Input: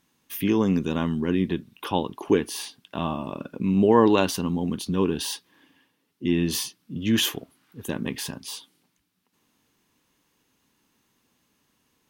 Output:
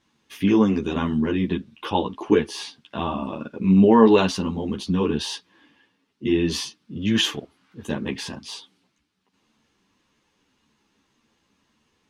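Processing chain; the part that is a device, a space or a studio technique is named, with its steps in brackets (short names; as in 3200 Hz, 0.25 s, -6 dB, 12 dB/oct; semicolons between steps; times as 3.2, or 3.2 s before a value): string-machine ensemble chorus (ensemble effect; LPF 5900 Hz 12 dB/oct); gain +5.5 dB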